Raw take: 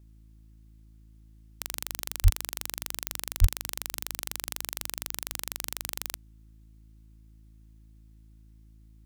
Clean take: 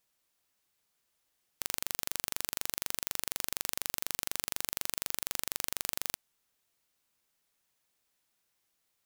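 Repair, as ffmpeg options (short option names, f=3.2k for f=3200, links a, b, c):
-filter_complex "[0:a]bandreject=f=54.1:t=h:w=4,bandreject=f=108.2:t=h:w=4,bandreject=f=162.3:t=h:w=4,bandreject=f=216.4:t=h:w=4,bandreject=f=270.5:t=h:w=4,bandreject=f=324.6:t=h:w=4,asplit=3[a][b][c];[a]afade=t=out:st=2.23:d=0.02[d];[b]highpass=f=140:w=0.5412,highpass=f=140:w=1.3066,afade=t=in:st=2.23:d=0.02,afade=t=out:st=2.35:d=0.02[e];[c]afade=t=in:st=2.35:d=0.02[f];[d][e][f]amix=inputs=3:normalize=0,asplit=3[g][h][i];[g]afade=t=out:st=3.4:d=0.02[j];[h]highpass=f=140:w=0.5412,highpass=f=140:w=1.3066,afade=t=in:st=3.4:d=0.02,afade=t=out:st=3.52:d=0.02[k];[i]afade=t=in:st=3.52:d=0.02[l];[j][k][l]amix=inputs=3:normalize=0"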